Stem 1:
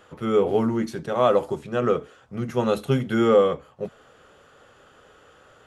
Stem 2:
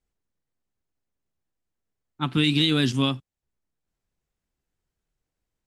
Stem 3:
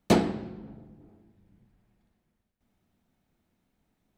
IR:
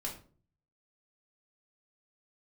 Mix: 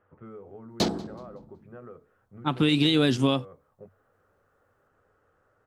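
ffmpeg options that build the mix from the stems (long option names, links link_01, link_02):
-filter_complex "[0:a]lowpass=frequency=1900:width=0.5412,lowpass=frequency=1900:width=1.3066,equalizer=frequency=96:width=5.5:gain=11.5,acompressor=threshold=-27dB:ratio=6,volume=-15dB[link_01];[1:a]equalizer=frequency=580:width=0.96:gain=10.5,adelay=250,volume=-1dB[link_02];[2:a]afwtdn=0.0126,aexciter=amount=3.9:drive=7:freq=3500,adelay=700,volume=-4dB,asplit=2[link_03][link_04];[link_04]volume=-24dB,aecho=0:1:187|374|561|748:1|0.29|0.0841|0.0244[link_05];[link_01][link_02][link_03][link_05]amix=inputs=4:normalize=0,alimiter=limit=-11.5dB:level=0:latency=1:release=130"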